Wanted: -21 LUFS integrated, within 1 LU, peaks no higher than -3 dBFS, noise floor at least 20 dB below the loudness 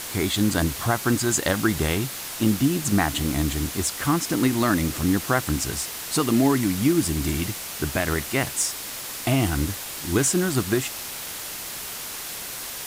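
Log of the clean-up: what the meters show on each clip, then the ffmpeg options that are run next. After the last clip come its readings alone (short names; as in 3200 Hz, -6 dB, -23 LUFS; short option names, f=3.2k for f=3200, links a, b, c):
noise floor -34 dBFS; noise floor target -44 dBFS; loudness -24.0 LUFS; peak -8.0 dBFS; loudness target -21.0 LUFS
-> -af "afftdn=nr=10:nf=-34"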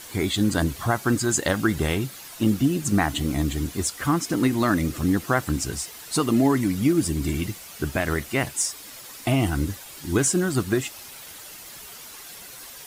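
noise floor -42 dBFS; noise floor target -44 dBFS
-> -af "afftdn=nr=6:nf=-42"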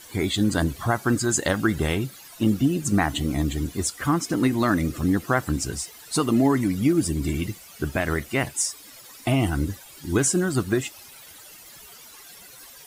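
noise floor -46 dBFS; loudness -24.0 LUFS; peak -8.5 dBFS; loudness target -21.0 LUFS
-> -af "volume=3dB"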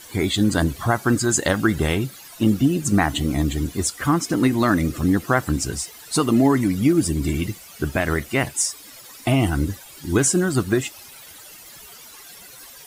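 loudness -21.0 LUFS; peak -5.5 dBFS; noise floor -43 dBFS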